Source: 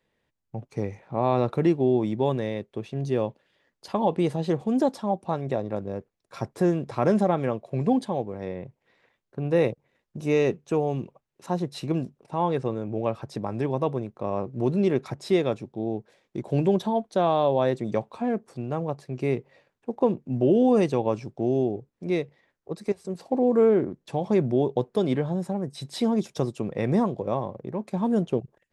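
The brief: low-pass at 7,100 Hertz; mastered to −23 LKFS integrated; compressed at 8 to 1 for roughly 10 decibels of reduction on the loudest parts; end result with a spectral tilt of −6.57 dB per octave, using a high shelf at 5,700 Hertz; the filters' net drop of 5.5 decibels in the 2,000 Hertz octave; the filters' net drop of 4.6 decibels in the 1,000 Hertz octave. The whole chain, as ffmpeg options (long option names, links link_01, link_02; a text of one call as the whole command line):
ffmpeg -i in.wav -af "lowpass=7100,equalizer=frequency=1000:width_type=o:gain=-5.5,equalizer=frequency=2000:width_type=o:gain=-6.5,highshelf=frequency=5700:gain=7.5,acompressor=threshold=-27dB:ratio=8,volume=11dB" out.wav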